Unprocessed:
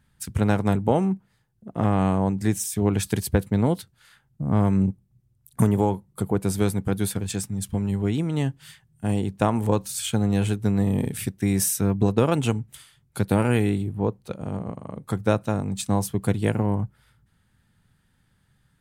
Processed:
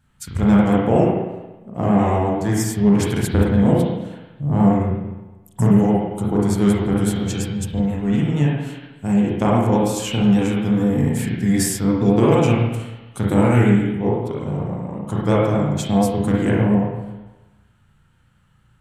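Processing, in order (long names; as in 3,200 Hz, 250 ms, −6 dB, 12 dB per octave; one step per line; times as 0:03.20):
spring reverb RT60 1.1 s, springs 34/54 ms, chirp 20 ms, DRR −5.5 dB
pitch vibrato 8.5 Hz 41 cents
formants moved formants −2 semitones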